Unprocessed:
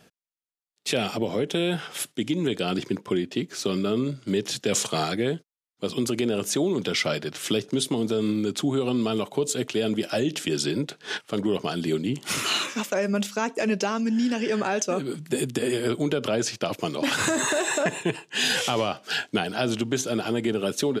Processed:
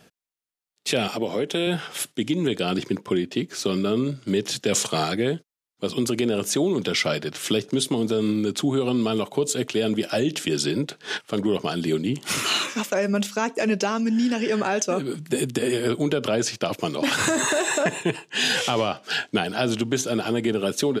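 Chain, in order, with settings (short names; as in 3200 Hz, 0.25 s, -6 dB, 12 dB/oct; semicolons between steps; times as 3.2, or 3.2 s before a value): 1.08–1.67 HPF 230 Hz 6 dB/oct; 18.28–19.36 high shelf 11000 Hz -8.5 dB; gain +2 dB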